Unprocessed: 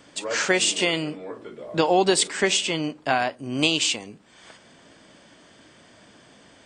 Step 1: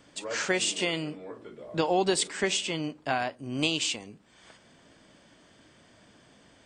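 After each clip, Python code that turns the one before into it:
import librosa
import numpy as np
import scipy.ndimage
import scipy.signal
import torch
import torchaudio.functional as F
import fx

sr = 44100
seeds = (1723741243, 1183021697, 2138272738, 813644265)

y = fx.low_shelf(x, sr, hz=130.0, db=6.5)
y = y * 10.0 ** (-6.5 / 20.0)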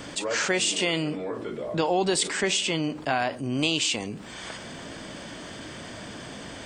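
y = fx.env_flatten(x, sr, amount_pct=50)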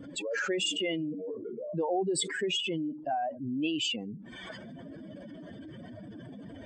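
y = fx.spec_expand(x, sr, power=2.7)
y = y * 10.0 ** (-5.0 / 20.0)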